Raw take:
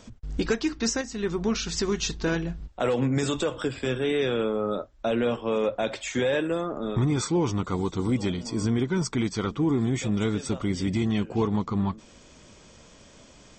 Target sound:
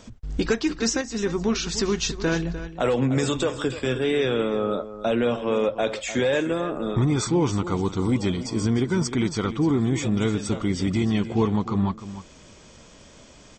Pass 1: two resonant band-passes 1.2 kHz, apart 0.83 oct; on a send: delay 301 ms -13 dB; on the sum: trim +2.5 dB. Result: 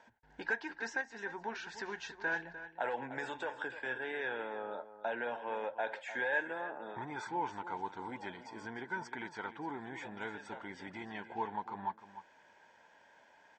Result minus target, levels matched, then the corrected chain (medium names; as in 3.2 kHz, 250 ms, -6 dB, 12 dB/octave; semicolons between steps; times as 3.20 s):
1 kHz band +9.0 dB
on a send: delay 301 ms -13 dB; on the sum: trim +2.5 dB